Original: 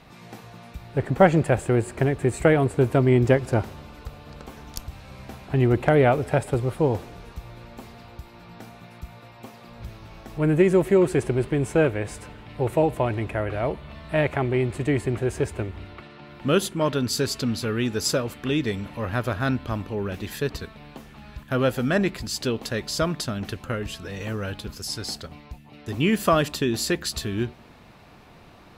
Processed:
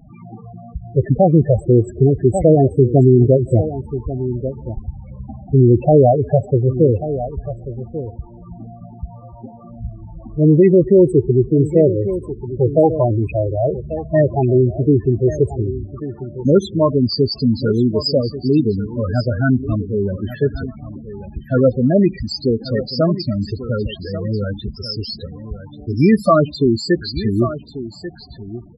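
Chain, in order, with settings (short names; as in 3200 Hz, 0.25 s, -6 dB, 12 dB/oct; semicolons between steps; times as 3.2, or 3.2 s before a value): loudest bins only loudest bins 8; echo 1.139 s -13.5 dB; maximiser +12 dB; gain -2 dB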